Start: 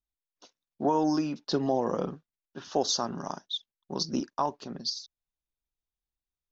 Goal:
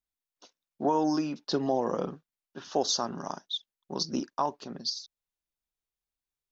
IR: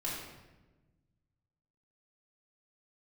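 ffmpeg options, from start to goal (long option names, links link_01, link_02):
-af "lowshelf=frequency=130:gain=-6"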